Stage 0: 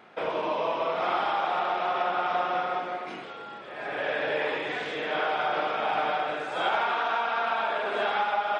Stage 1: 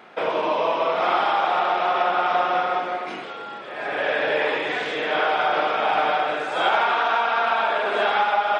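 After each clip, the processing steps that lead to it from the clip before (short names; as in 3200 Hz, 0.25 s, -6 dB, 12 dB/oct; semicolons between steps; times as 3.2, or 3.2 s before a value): low shelf 110 Hz -11.5 dB; gain +6.5 dB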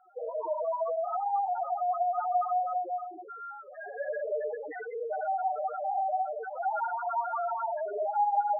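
loudest bins only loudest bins 2; gain -2.5 dB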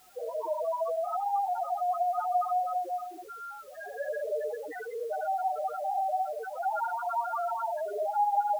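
requantised 10-bit, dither triangular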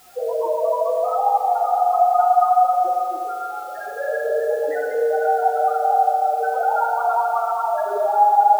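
reverb RT60 3.2 s, pre-delay 3 ms, DRR 0.5 dB; gain +8.5 dB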